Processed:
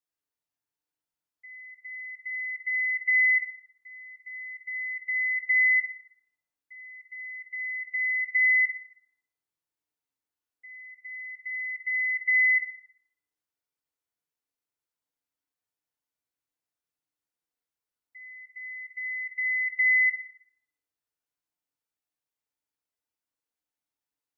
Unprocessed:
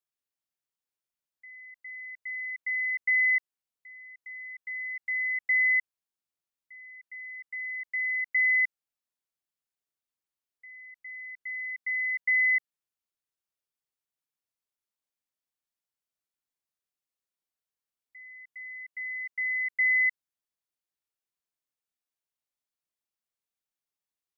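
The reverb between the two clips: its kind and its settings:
feedback delay network reverb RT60 0.89 s, low-frequency decay 0.9×, high-frequency decay 0.3×, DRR −2.5 dB
level −3.5 dB

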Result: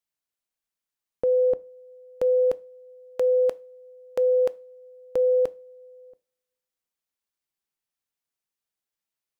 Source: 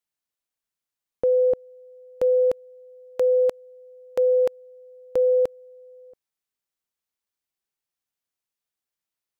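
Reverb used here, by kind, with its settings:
coupled-rooms reverb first 0.3 s, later 1.8 s, from −28 dB, DRR 16.5 dB
level −1.5 dB

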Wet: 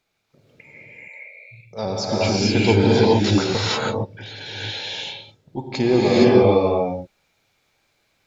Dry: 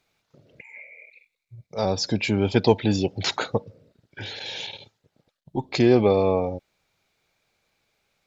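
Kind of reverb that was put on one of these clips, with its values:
reverb whose tail is shaped and stops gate 490 ms rising, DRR −7 dB
level −2.5 dB

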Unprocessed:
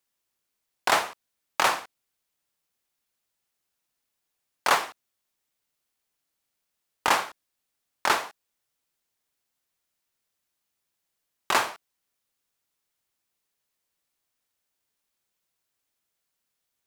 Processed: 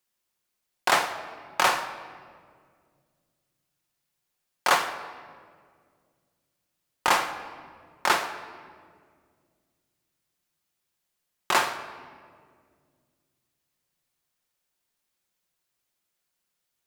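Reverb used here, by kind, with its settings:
rectangular room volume 3,200 cubic metres, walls mixed, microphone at 0.93 metres

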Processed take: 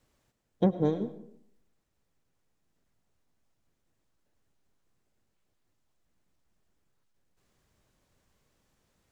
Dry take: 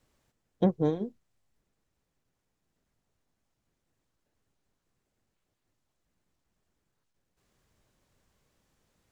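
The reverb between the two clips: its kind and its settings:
comb and all-pass reverb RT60 0.68 s, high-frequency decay 0.55×, pre-delay 65 ms, DRR 13 dB

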